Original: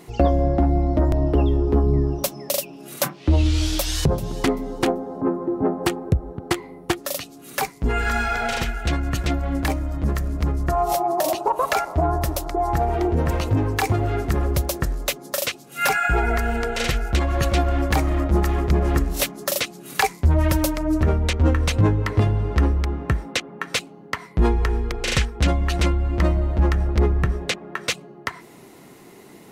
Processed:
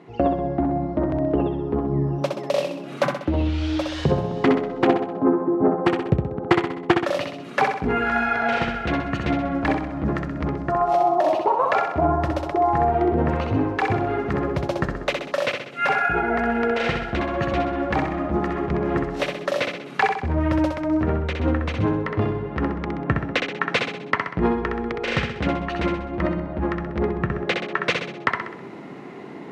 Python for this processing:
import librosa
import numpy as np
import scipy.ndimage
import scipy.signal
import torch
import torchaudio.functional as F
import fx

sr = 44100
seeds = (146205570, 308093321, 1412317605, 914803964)

y = fx.rider(x, sr, range_db=10, speed_s=0.5)
y = fx.bandpass_edges(y, sr, low_hz=130.0, high_hz=2300.0)
y = fx.echo_feedback(y, sr, ms=64, feedback_pct=50, wet_db=-5)
y = y * librosa.db_to_amplitude(1.0)